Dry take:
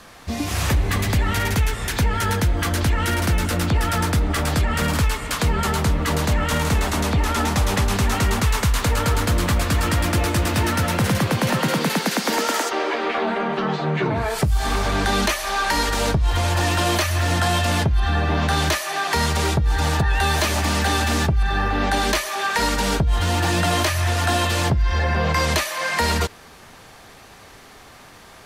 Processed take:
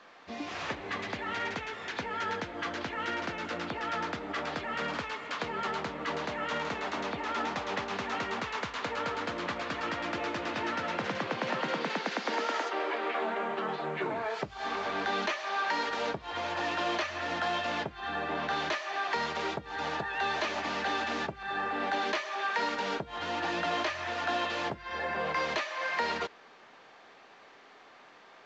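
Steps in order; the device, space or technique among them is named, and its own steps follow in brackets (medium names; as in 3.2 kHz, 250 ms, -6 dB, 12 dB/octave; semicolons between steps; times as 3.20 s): telephone (band-pass 330–3400 Hz; trim -8.5 dB; µ-law 128 kbps 16 kHz)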